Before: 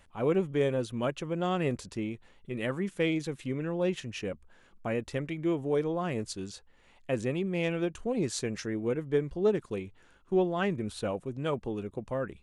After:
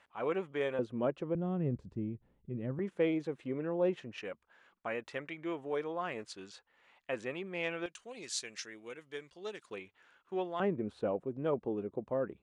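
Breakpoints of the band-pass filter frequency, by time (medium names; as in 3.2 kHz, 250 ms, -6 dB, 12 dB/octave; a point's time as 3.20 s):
band-pass filter, Q 0.67
1.4 kHz
from 0.79 s 430 Hz
from 1.35 s 120 Hz
from 2.79 s 600 Hz
from 4.18 s 1.5 kHz
from 7.86 s 4.4 kHz
from 9.66 s 1.8 kHz
from 10.60 s 450 Hz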